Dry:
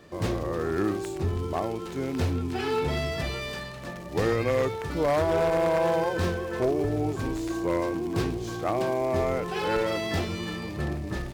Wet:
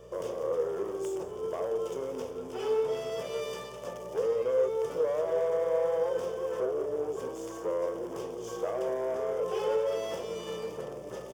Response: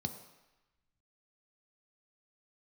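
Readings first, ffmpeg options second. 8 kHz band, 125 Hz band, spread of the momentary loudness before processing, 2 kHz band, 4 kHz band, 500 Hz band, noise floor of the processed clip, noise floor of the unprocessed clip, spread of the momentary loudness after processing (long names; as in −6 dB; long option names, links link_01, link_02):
can't be measured, −20.0 dB, 8 LU, −13.5 dB, −9.0 dB, −1.5 dB, −42 dBFS, −37 dBFS, 10 LU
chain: -filter_complex "[0:a]equalizer=frequency=1700:width_type=o:width=0.89:gain=-11,acompressor=threshold=-30dB:ratio=6,asoftclip=type=hard:threshold=-30.5dB,highpass=frequency=490:width_type=q:width=4.9,bandreject=frequency=3900:width=6.1,aeval=exprs='val(0)+0.001*(sin(2*PI*60*n/s)+sin(2*PI*2*60*n/s)/2+sin(2*PI*3*60*n/s)/3+sin(2*PI*4*60*n/s)/4+sin(2*PI*5*60*n/s)/5)':channel_layout=same,aecho=1:1:173:0.158,asplit=2[link_01][link_02];[1:a]atrim=start_sample=2205[link_03];[link_02][link_03]afir=irnorm=-1:irlink=0,volume=-8.5dB[link_04];[link_01][link_04]amix=inputs=2:normalize=0"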